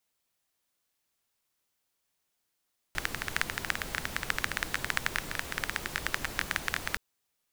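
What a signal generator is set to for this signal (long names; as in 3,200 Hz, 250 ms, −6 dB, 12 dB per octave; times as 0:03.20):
rain-like ticks over hiss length 4.02 s, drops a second 14, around 1,700 Hz, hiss −4.5 dB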